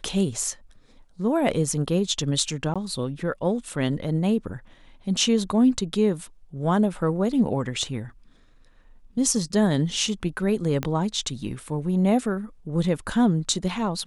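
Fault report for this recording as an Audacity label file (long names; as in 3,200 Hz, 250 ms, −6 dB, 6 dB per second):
2.740000	2.760000	drop-out 16 ms
10.830000	10.830000	click −12 dBFS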